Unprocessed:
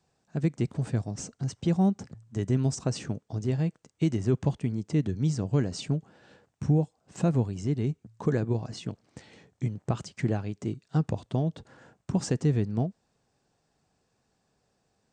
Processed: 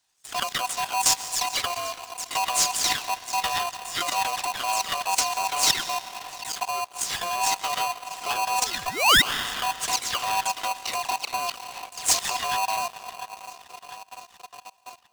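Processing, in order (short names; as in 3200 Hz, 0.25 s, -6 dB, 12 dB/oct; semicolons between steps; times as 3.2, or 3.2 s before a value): spectral delay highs early, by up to 0.166 s; on a send: darkening echo 0.696 s, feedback 70%, low-pass 4800 Hz, level -19 dB; on the sum: level quantiser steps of 17 dB; painted sound rise, 8.57–9.22, 310–3000 Hz -38 dBFS; EQ curve 120 Hz 0 dB, 240 Hz -14 dB, 940 Hz -17 dB, 2000 Hz +14 dB; digital reverb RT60 2.5 s, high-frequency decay 0.6×, pre-delay 95 ms, DRR 12.5 dB; dynamic EQ 130 Hz, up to -4 dB, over -55 dBFS, Q 6.8; in parallel at -1 dB: compressor, threshold -52 dBFS, peak gain reduction 25.5 dB; on the sum: sample leveller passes 2; polarity switched at an audio rate 870 Hz; gain +3.5 dB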